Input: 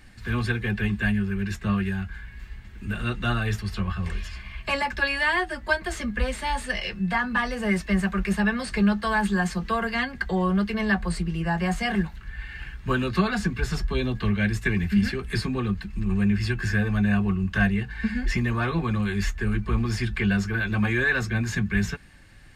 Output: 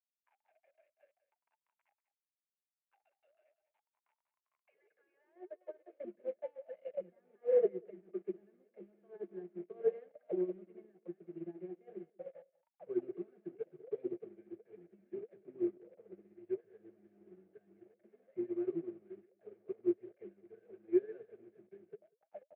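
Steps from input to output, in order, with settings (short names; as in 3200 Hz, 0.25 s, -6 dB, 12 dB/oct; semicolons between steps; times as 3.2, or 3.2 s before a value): reverse delay 0.46 s, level -12 dB; de-hum 388.6 Hz, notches 3; limiter -20 dBFS, peak gain reduction 11.5 dB; high-pass sweep 2400 Hz -> 140 Hz, 4.65–6.29; bit-crush 5-bit; auto-wah 350–1100 Hz, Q 22, down, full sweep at -21.5 dBFS; speaker cabinet 100–3100 Hz, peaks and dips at 120 Hz -5 dB, 230 Hz -8 dB, 640 Hz +7 dB, 1000 Hz -9 dB, 2200 Hz +6 dB; echo 0.19 s -12.5 dB; upward expander 2.5:1, over -54 dBFS; gain +12 dB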